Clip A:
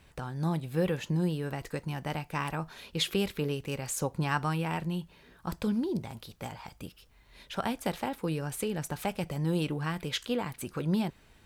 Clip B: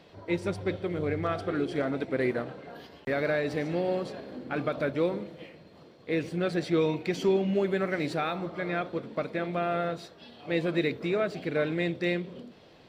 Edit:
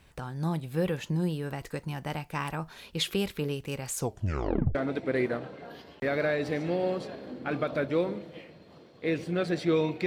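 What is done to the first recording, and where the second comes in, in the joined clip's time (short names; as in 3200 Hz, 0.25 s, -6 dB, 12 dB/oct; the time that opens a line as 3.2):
clip A
3.97 tape stop 0.78 s
4.75 switch to clip B from 1.8 s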